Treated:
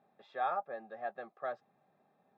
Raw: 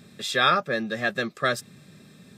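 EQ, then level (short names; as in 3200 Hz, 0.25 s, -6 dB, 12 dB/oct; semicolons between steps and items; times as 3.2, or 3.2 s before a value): band-pass 780 Hz, Q 7.2; air absorption 180 m; +1.0 dB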